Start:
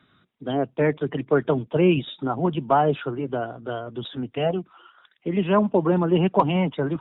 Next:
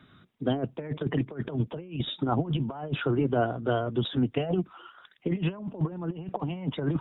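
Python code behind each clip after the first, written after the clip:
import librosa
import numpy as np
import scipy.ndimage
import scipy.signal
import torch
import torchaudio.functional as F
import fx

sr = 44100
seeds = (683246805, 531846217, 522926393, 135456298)

y = fx.low_shelf(x, sr, hz=270.0, db=6.0)
y = fx.over_compress(y, sr, threshold_db=-24.0, ratio=-0.5)
y = F.gain(torch.from_numpy(y), -3.5).numpy()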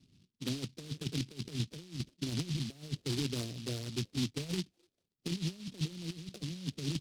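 y = scipy.ndimage.gaussian_filter1d(x, 20.0, mode='constant')
y = fx.noise_mod_delay(y, sr, seeds[0], noise_hz=3800.0, depth_ms=0.27)
y = F.gain(torch.from_numpy(y), -6.0).numpy()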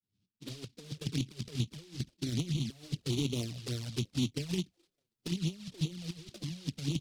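y = fx.fade_in_head(x, sr, length_s=1.05)
y = fx.env_flanger(y, sr, rest_ms=10.0, full_db=-31.5)
y = F.gain(torch.from_numpy(y), 3.0).numpy()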